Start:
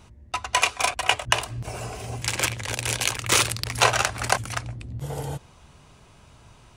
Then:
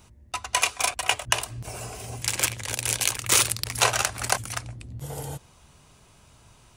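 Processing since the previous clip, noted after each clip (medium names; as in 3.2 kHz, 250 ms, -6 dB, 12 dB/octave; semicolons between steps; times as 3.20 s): treble shelf 6.5 kHz +11 dB; trim -4 dB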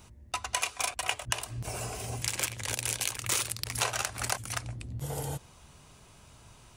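compression 3:1, threshold -29 dBFS, peak gain reduction 11 dB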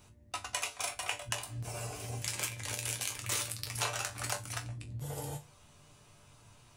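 chord resonator G2 minor, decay 0.21 s; trim +6 dB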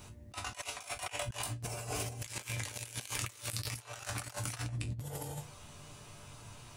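compressor with a negative ratio -43 dBFS, ratio -0.5; trim +3 dB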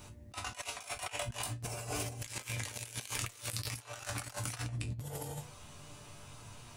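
flange 0.5 Hz, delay 3.3 ms, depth 1.4 ms, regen +89%; trim +4.5 dB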